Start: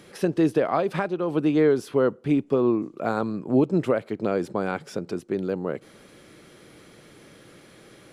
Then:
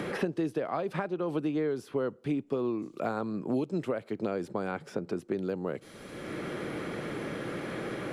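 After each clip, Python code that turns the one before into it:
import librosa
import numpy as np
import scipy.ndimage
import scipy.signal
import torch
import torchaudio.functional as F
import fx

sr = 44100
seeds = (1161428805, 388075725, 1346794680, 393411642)

y = fx.band_squash(x, sr, depth_pct=100)
y = F.gain(torch.from_numpy(y), -8.5).numpy()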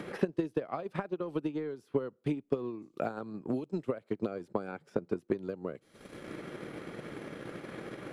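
y = fx.transient(x, sr, attack_db=11, sustain_db=-7)
y = F.gain(torch.from_numpy(y), -8.0).numpy()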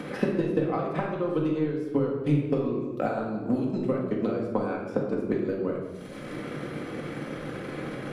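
y = fx.room_shoebox(x, sr, seeds[0], volume_m3=760.0, walls='mixed', distance_m=2.0)
y = F.gain(torch.from_numpy(y), 3.0).numpy()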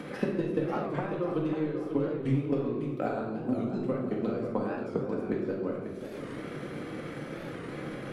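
y = fx.echo_feedback(x, sr, ms=542, feedback_pct=41, wet_db=-9)
y = fx.record_warp(y, sr, rpm=45.0, depth_cents=160.0)
y = F.gain(torch.from_numpy(y), -4.0).numpy()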